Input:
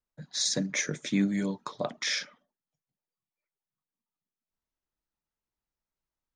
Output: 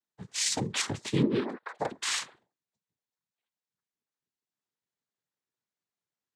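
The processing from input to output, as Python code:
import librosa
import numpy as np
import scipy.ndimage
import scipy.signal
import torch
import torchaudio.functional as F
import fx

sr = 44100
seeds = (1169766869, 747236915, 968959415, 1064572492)

y = fx.sine_speech(x, sr, at=(1.22, 1.79))
y = fx.noise_vocoder(y, sr, seeds[0], bands=6)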